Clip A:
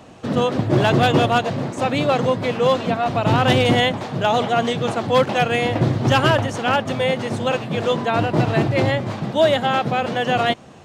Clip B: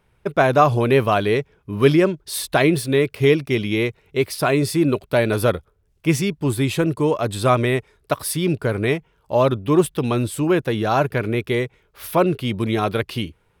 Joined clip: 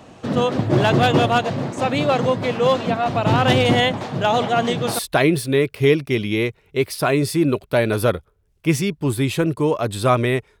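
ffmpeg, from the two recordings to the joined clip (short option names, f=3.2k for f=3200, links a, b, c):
-filter_complex "[0:a]apad=whole_dur=10.6,atrim=end=10.6,atrim=end=4.99,asetpts=PTS-STARTPTS[a];[1:a]atrim=start=2.09:end=8,asetpts=PTS-STARTPTS[b];[a][b]acrossfade=d=0.3:c1=log:c2=log"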